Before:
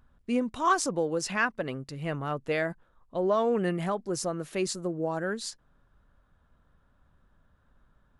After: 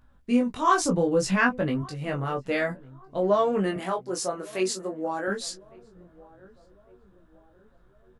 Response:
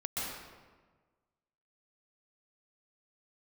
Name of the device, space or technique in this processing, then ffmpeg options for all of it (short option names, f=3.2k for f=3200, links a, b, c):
double-tracked vocal: -filter_complex "[0:a]asettb=1/sr,asplit=3[a][b][c];[a]atrim=end=0.804[d];[b]atrim=start=0.8:end=1.82,asetpts=PTS-STARTPTS,afade=t=in:d=0.004:c=qsin,afade=t=out:st=1.016:d=0.004:c=qsin,bass=f=250:g=10,treble=f=4k:g=-1[e];[c]atrim=start=1.816[f];[d][e]acrossfade=d=0.004:c1=hsin:c2=qsin[g];[g][f]acrossfade=d=0.004:c1=qsin:c2=hsin,asettb=1/sr,asplit=3[h][i][j];[h]atrim=end=3.764[k];[i]atrim=start=3.76:end=5.28,asetpts=PTS-STARTPTS,afade=t=in:d=0.004:c=qsin,afade=t=out:st=1.516:d=0.004:c=qsin,highpass=320[l];[j]atrim=start=5.276[m];[k][l]acrossfade=d=0.004:c1=hsin:c2=qsin[n];[n][m]acrossfade=d=0.004:c1=qsin:c2=hsin,asplit=2[o][p];[p]adelay=16,volume=-8dB[q];[o][q]amix=inputs=2:normalize=0,asplit=2[r][s];[s]adelay=1155,lowpass=f=930:p=1,volume=-22.5dB,asplit=2[t][u];[u]adelay=1155,lowpass=f=930:p=1,volume=0.53,asplit=2[v][w];[w]adelay=1155,lowpass=f=930:p=1,volume=0.53,asplit=2[x][y];[y]adelay=1155,lowpass=f=930:p=1,volume=0.53[z];[r][t][v][x][z]amix=inputs=5:normalize=0,flanger=delay=19.5:depth=3.6:speed=0.58,volume=5.5dB"